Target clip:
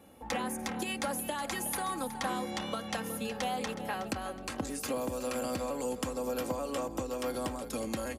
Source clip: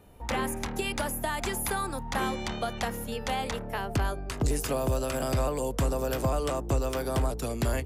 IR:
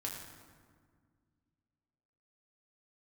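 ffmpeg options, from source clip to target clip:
-af "acompressor=threshold=-33dB:ratio=3,highpass=130,aecho=1:1:3.6:0.58,aecho=1:1:354|708|1062|1416:0.224|0.0873|0.0341|0.0133,asetrate=42336,aresample=44100"

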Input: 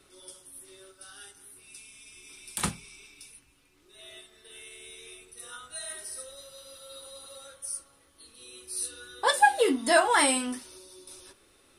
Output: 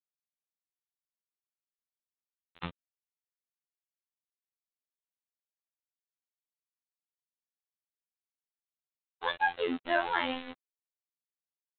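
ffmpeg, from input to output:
-af "aresample=8000,aeval=exprs='val(0)*gte(abs(val(0)),0.0355)':c=same,aresample=44100,afftfilt=real='hypot(re,im)*cos(PI*b)':imag='0':win_size=2048:overlap=0.75,volume=-4dB"

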